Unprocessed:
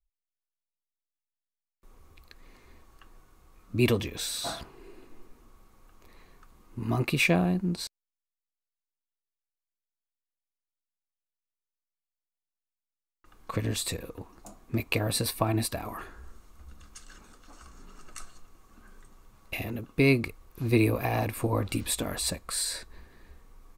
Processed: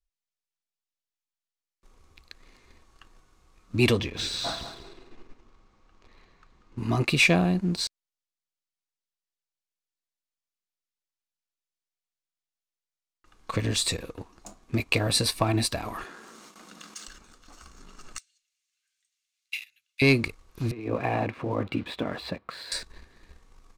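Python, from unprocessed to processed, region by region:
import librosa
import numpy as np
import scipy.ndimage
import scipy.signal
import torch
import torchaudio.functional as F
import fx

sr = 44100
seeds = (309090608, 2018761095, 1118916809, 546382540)

y = fx.chain(x, sr, fx.air_absorb(metres=110.0),
    fx.echo_feedback(ms=189, feedback_pct=29, wet_db=-9.0), at=(3.99, 6.78))
y = fx.chain(y, sr, fx.steep_highpass(hz=170.0, slope=48),
    fx.gate_hold(open_db=-50.0, close_db=-56.0, hold_ms=71.0, range_db=-21, attack_ms=1.4, release_ms=100.0),
    fx.env_flatten(amount_pct=70), at=(16.04, 17.08))
y = fx.chain(y, sr, fx.cheby2_highpass(hz=860.0, order=4, stop_db=50),
    fx.upward_expand(threshold_db=-55.0, expansion=1.5), at=(18.18, 20.02))
y = fx.chain(y, sr, fx.over_compress(threshold_db=-27.0, ratio=-0.5),
    fx.bandpass_edges(low_hz=140.0, high_hz=7700.0),
    fx.air_absorb(metres=450.0), at=(20.71, 22.72))
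y = scipy.signal.sosfilt(scipy.signal.butter(2, 6200.0, 'lowpass', fs=sr, output='sos'), y)
y = fx.high_shelf(y, sr, hz=3300.0, db=10.0)
y = fx.leveller(y, sr, passes=1)
y = F.gain(torch.from_numpy(y), -1.5).numpy()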